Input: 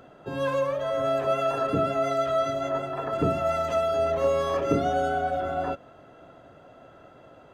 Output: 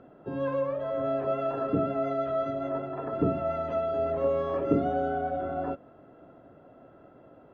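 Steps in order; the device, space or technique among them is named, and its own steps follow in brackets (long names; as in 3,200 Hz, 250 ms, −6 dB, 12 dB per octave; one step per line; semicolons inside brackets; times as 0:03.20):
phone in a pocket (low-pass filter 3,200 Hz 12 dB per octave; parametric band 280 Hz +6 dB 1.5 octaves; high-shelf EQ 2,100 Hz −9 dB)
level −4.5 dB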